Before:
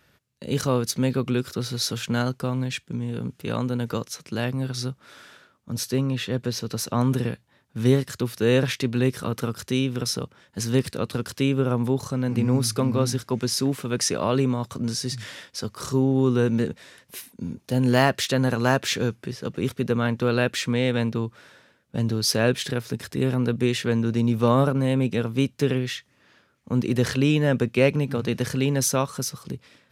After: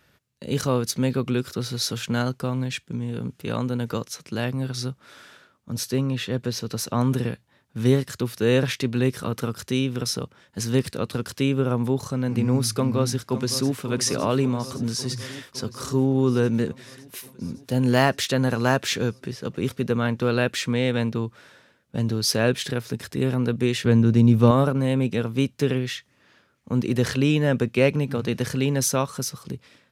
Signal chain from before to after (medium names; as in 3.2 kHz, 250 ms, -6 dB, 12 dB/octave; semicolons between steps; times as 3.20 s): 12.73–13.83 s: echo throw 560 ms, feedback 75%, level -12 dB; 23.85–24.51 s: bass shelf 270 Hz +9 dB